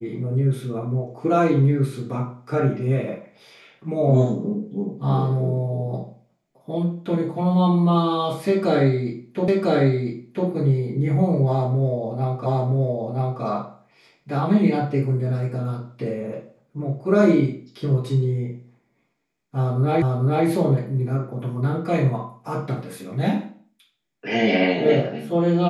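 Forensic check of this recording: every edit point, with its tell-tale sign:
9.48 repeat of the last 1 s
12.46 repeat of the last 0.97 s
20.02 repeat of the last 0.44 s

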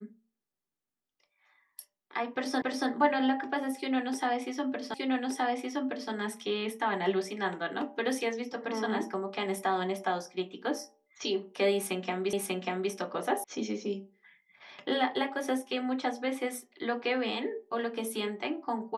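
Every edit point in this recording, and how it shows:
2.62 repeat of the last 0.28 s
4.94 repeat of the last 1.17 s
12.33 repeat of the last 0.59 s
13.44 sound cut off

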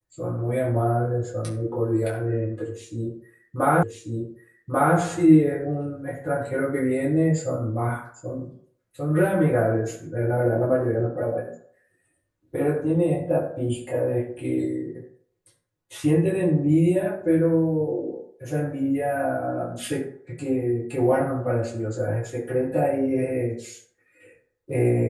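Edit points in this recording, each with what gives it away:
3.83 repeat of the last 1.14 s

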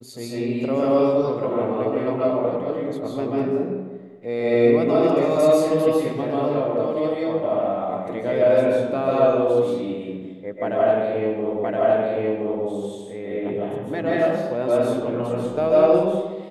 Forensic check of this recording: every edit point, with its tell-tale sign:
11.64 repeat of the last 1.02 s

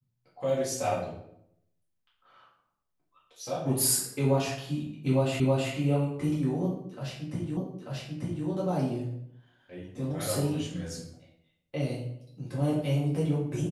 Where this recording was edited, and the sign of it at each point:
5.4 repeat of the last 0.32 s
7.57 repeat of the last 0.89 s

